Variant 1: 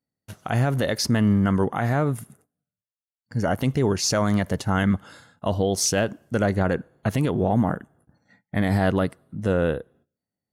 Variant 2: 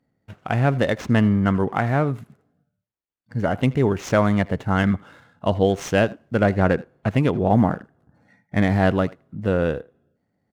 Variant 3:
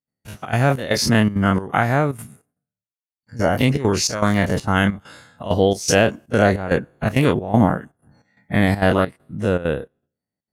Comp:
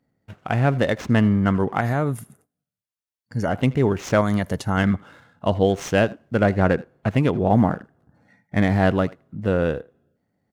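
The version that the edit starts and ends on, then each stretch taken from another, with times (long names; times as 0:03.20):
2
0:01.81–0:03.49: punch in from 1
0:04.21–0:04.77: punch in from 1
not used: 3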